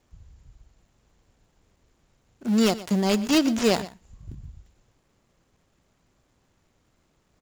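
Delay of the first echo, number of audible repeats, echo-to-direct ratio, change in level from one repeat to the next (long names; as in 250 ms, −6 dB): 121 ms, 1, −17.0 dB, repeats not evenly spaced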